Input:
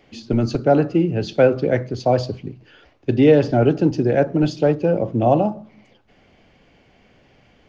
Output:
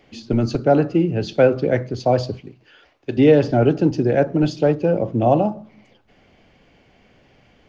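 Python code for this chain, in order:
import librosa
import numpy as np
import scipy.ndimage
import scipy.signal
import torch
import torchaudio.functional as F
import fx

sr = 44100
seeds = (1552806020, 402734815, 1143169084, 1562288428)

y = fx.low_shelf(x, sr, hz=340.0, db=-11.0, at=(2.4, 3.17))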